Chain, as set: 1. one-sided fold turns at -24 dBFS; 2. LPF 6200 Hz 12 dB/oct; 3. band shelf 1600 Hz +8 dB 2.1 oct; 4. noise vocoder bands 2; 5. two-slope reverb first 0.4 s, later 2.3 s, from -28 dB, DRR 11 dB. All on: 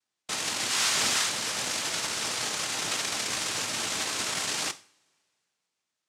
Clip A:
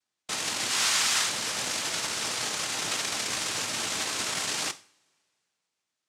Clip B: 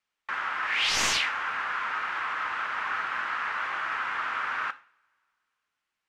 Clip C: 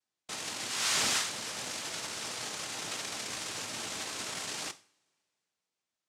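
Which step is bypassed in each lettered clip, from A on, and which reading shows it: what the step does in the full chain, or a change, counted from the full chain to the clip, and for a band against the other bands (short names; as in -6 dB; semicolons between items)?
1, distortion -6 dB; 4, 1 kHz band +12.5 dB; 3, momentary loudness spread change +4 LU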